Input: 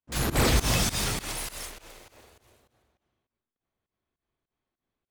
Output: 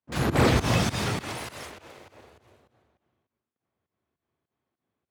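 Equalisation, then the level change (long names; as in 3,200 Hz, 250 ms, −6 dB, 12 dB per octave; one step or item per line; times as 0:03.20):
high-pass filter 76 Hz 24 dB per octave
low-pass filter 1,900 Hz 6 dB per octave
+4.5 dB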